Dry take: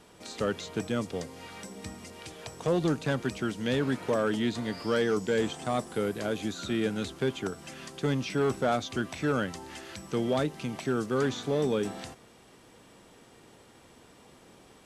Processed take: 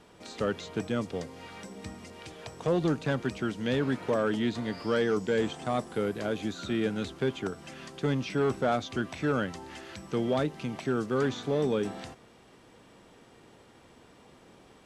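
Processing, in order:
high-shelf EQ 6,900 Hz −10 dB

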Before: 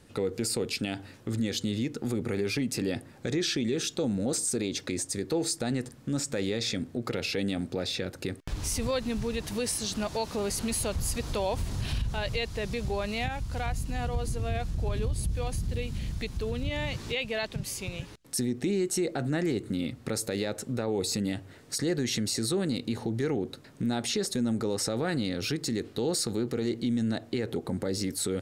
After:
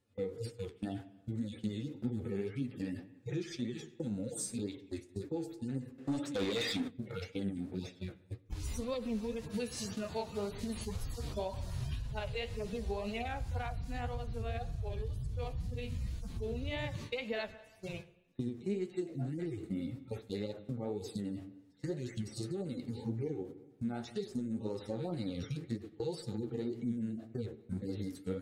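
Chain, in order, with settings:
harmonic-percussive split with one part muted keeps harmonic
noise gate −40 dBFS, range −21 dB
spring reverb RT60 1 s, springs 45/59 ms, chirp 50 ms, DRR 17 dB
downward compressor, threshold −34 dBFS, peak gain reduction 10 dB
0:05.98–0:06.88: mid-hump overdrive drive 22 dB, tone 5,000 Hz, clips at −25.5 dBFS
flanger 1.9 Hz, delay 6.6 ms, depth 9.3 ms, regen +55%
level +4 dB

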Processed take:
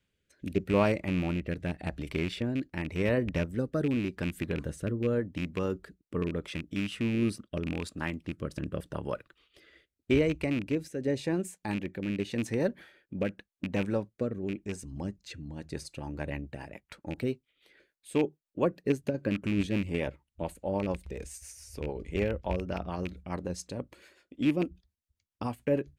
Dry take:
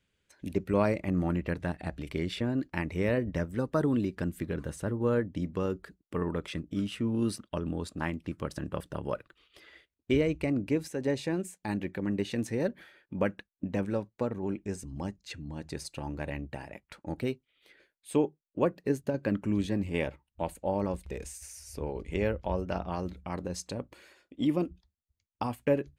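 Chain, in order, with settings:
loose part that buzzes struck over −30 dBFS, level −26 dBFS
rotating-speaker cabinet horn 0.85 Hz, later 7 Hz, at 0:14.73
level +1.5 dB

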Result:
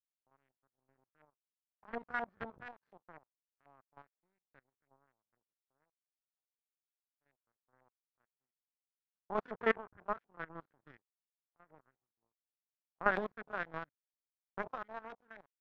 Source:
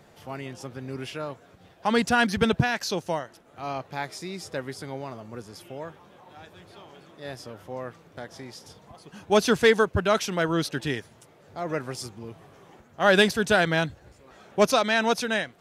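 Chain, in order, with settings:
spectrum averaged block by block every 50 ms
power curve on the samples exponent 3
auto-filter low-pass saw up 4.1 Hz 750–1,900 Hz
level −5 dB

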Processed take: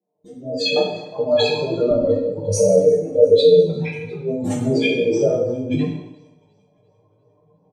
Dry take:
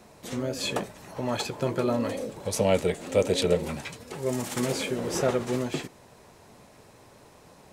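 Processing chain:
expanding power law on the bin magnitudes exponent 2.9
high-pass filter 220 Hz 12 dB per octave, from 0:01.91 48 Hz
noise gate with hold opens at −41 dBFS
comb filter 6.6 ms, depth 87%
automatic gain control gain up to 15.5 dB
chorus effect 2.2 Hz, delay 16.5 ms, depth 3.4 ms
delay with a high-pass on its return 351 ms, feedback 49%, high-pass 3,600 Hz, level −23 dB
dense smooth reverb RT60 0.9 s, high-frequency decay 0.9×, DRR −1.5 dB
every ending faded ahead of time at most 550 dB per second
level −3 dB

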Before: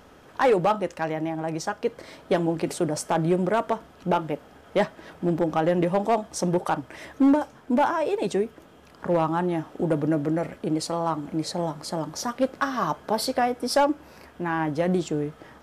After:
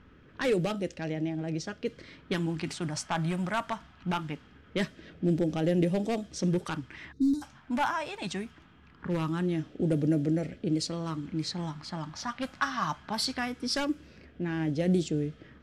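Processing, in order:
gain on a spectral selection 0:07.12–0:07.43, 480–3,600 Hz −27 dB
low-pass that shuts in the quiet parts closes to 1,900 Hz, open at −18 dBFS
all-pass phaser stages 2, 0.22 Hz, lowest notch 430–1,000 Hz

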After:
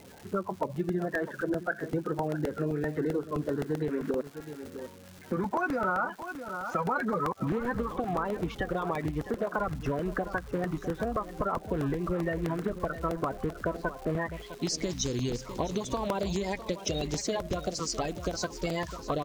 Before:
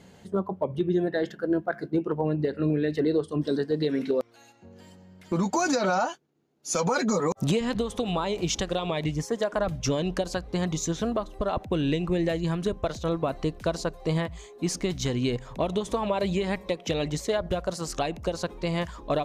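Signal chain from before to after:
spectral magnitudes quantised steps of 30 dB
single-tap delay 655 ms −15.5 dB
low-pass filter sweep 1,500 Hz → 6,000 Hz, 0:14.19–0:14.75
surface crackle 560 per second −41 dBFS
downward compressor 3 to 1, threshold −28 dBFS, peak gain reduction 8.5 dB
regular buffer underruns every 0.13 s, samples 64, repeat, from 0:00.63

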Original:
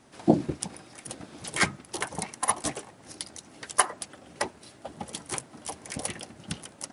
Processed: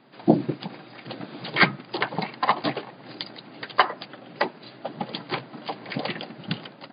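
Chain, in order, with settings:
brick-wall band-pass 110–4,900 Hz
automatic gain control gain up to 6 dB
level +1.5 dB

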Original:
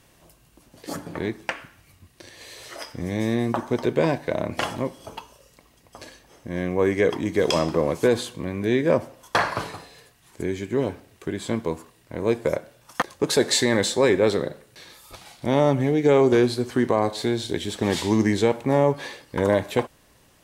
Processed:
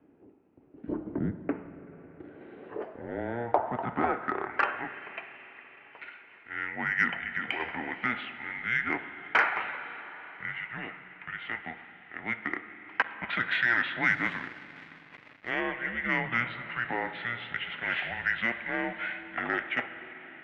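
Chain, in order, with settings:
0:07.12–0:07.60: downward compressor, threshold −22 dBFS, peak gain reduction 6.5 dB
on a send at −10.5 dB: convolution reverb RT60 5.1 s, pre-delay 42 ms
on the sum: single-sideband voice off tune −240 Hz 250–3,000 Hz
0:14.08–0:15.51: slack as between gear wheels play −34.5 dBFS
band-pass filter sweep 290 Hz → 2,100 Hz, 0:01.88–0:05.26
in parallel at −4 dB: soft clipping −23 dBFS, distortion −18 dB
on the sum: level +4 dB

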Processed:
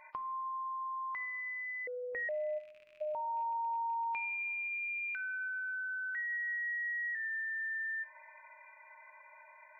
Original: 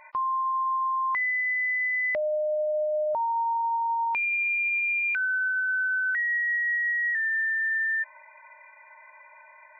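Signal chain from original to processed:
loose part that buzzes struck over −52 dBFS, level −43 dBFS
0:02.58–0:03.01: time-frequency box erased 470–980 Hz
downward compressor 5 to 1, threshold −32 dBFS, peak gain reduction 7 dB
rectangular room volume 1,400 cubic metres, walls mixed, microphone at 0.57 metres
0:01.87–0:02.29: voice inversion scrambler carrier 2,500 Hz
level −6 dB

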